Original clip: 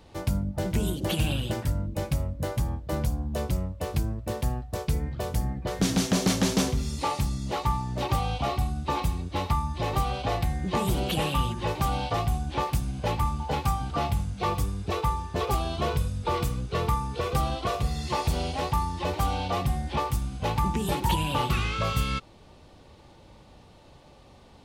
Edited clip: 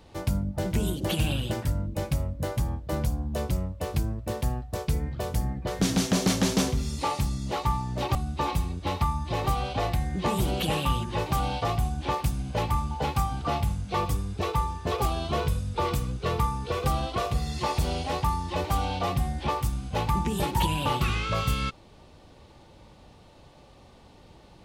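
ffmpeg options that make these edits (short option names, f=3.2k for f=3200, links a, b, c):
-filter_complex "[0:a]asplit=2[a][b];[a]atrim=end=8.152[c];[b]atrim=start=8.638[d];[c][d]acrossfade=d=0.004:c1=hsin:c2=hsin"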